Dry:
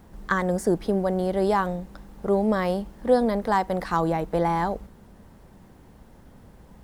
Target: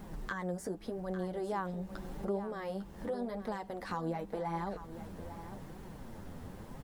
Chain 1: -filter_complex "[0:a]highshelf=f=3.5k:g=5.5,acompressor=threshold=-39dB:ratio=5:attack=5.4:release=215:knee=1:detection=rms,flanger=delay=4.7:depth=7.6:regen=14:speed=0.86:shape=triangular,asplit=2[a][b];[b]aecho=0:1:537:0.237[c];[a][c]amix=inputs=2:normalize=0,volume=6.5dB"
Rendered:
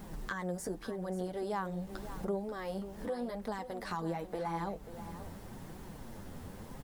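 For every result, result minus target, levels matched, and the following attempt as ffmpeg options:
echo 0.314 s early; 8000 Hz band +4.5 dB
-filter_complex "[0:a]highshelf=f=3.5k:g=5.5,acompressor=threshold=-39dB:ratio=5:attack=5.4:release=215:knee=1:detection=rms,flanger=delay=4.7:depth=7.6:regen=14:speed=0.86:shape=triangular,asplit=2[a][b];[b]aecho=0:1:851:0.237[c];[a][c]amix=inputs=2:normalize=0,volume=6.5dB"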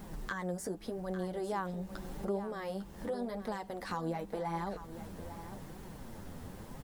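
8000 Hz band +4.5 dB
-filter_complex "[0:a]acompressor=threshold=-39dB:ratio=5:attack=5.4:release=215:knee=1:detection=rms,flanger=delay=4.7:depth=7.6:regen=14:speed=0.86:shape=triangular,asplit=2[a][b];[b]aecho=0:1:851:0.237[c];[a][c]amix=inputs=2:normalize=0,volume=6.5dB"

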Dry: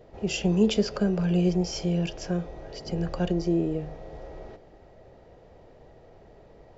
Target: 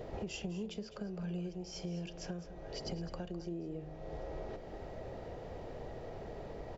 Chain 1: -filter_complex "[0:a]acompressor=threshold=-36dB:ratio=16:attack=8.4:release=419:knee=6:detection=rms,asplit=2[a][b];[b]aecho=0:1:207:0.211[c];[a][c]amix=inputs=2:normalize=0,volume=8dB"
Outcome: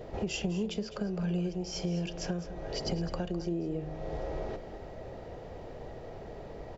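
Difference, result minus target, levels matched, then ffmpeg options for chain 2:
compressor: peak gain reduction -8 dB
-filter_complex "[0:a]acompressor=threshold=-44.5dB:ratio=16:attack=8.4:release=419:knee=6:detection=rms,asplit=2[a][b];[b]aecho=0:1:207:0.211[c];[a][c]amix=inputs=2:normalize=0,volume=8dB"

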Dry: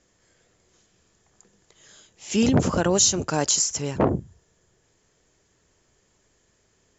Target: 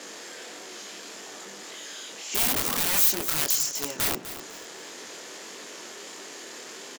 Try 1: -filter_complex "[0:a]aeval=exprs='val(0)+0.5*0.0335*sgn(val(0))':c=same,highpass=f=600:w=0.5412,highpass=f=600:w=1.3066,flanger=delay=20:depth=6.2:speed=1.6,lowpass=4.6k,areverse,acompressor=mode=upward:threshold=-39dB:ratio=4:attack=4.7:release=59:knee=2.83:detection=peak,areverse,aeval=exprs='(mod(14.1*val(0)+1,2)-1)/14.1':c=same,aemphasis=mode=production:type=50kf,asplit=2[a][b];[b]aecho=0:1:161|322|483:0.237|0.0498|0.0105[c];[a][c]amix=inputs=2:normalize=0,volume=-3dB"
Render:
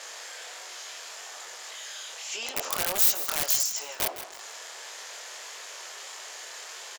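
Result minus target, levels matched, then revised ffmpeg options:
echo 89 ms early; 250 Hz band -5.5 dB
-filter_complex "[0:a]aeval=exprs='val(0)+0.5*0.0335*sgn(val(0))':c=same,highpass=f=250:w=0.5412,highpass=f=250:w=1.3066,flanger=delay=20:depth=6.2:speed=1.6,lowpass=4.6k,areverse,acompressor=mode=upward:threshold=-39dB:ratio=4:attack=4.7:release=59:knee=2.83:detection=peak,areverse,aeval=exprs='(mod(14.1*val(0)+1,2)-1)/14.1':c=same,aemphasis=mode=production:type=50kf,asplit=2[a][b];[b]aecho=0:1:250|500|750:0.237|0.0498|0.0105[c];[a][c]amix=inputs=2:normalize=0,volume=-3dB"

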